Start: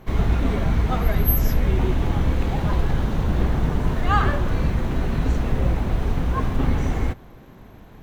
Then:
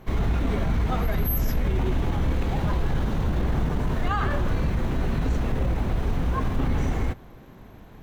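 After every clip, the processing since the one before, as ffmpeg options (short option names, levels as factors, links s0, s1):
-af "alimiter=limit=0.188:level=0:latency=1:release=17,volume=0.841"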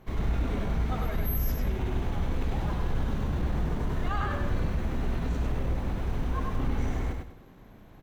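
-af "aecho=1:1:99|198|297|396:0.668|0.187|0.0524|0.0147,volume=0.447"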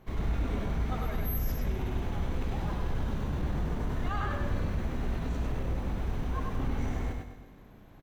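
-af "aecho=1:1:120|240|360|480|600|720:0.224|0.121|0.0653|0.0353|0.019|0.0103,volume=0.75"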